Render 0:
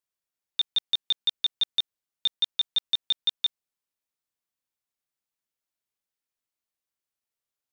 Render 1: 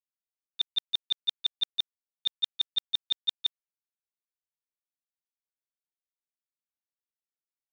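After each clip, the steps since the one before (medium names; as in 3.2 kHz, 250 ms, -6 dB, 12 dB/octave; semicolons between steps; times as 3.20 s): gate -23 dBFS, range -17 dB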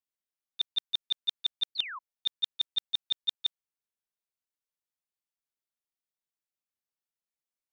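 painted sound fall, 1.75–1.99 s, 950–4700 Hz -38 dBFS; trim -1.5 dB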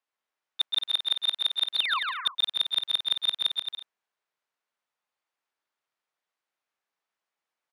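band-pass filter 1.1 kHz, Q 0.72; in parallel at -4 dB: hard clipper -33.5 dBFS, distortion -10 dB; on the sum: bouncing-ball echo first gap 130 ms, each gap 0.7×, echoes 5; trim +8 dB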